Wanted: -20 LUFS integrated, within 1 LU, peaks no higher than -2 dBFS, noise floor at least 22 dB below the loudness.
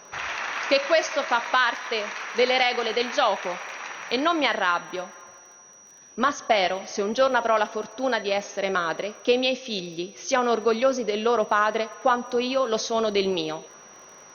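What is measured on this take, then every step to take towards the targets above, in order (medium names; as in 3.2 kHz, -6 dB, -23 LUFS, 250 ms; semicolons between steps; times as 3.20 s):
tick rate 35 per s; steady tone 5.8 kHz; tone level -48 dBFS; loudness -24.0 LUFS; peak level -8.0 dBFS; loudness target -20.0 LUFS
-> de-click; band-stop 5.8 kHz, Q 30; trim +4 dB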